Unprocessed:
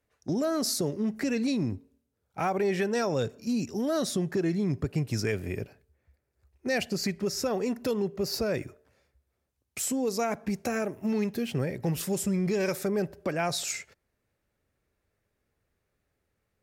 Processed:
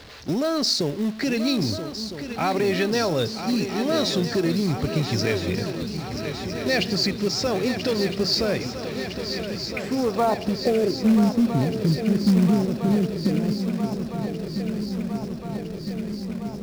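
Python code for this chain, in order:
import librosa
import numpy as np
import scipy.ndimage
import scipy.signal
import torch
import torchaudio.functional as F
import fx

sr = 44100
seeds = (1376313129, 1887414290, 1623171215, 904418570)

p1 = x + 0.5 * 10.0 ** (-42.5 / 20.0) * np.sign(x)
p2 = fx.filter_sweep_lowpass(p1, sr, from_hz=4400.0, to_hz=250.0, start_s=9.28, end_s=11.15, q=2.7)
p3 = fx.echo_swing(p2, sr, ms=1309, ratio=3, feedback_pct=73, wet_db=-10.0)
p4 = fx.quant_companded(p3, sr, bits=4)
y = p3 + (p4 * librosa.db_to_amplitude(-6.0))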